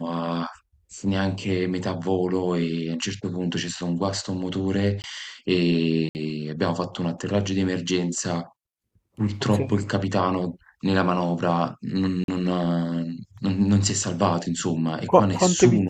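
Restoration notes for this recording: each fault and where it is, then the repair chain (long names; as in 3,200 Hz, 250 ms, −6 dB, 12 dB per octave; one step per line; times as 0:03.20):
0:05.02–0:05.04: drop-out 19 ms
0:06.09–0:06.15: drop-out 59 ms
0:12.24–0:12.28: drop-out 42 ms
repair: repair the gap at 0:05.02, 19 ms
repair the gap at 0:06.09, 59 ms
repair the gap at 0:12.24, 42 ms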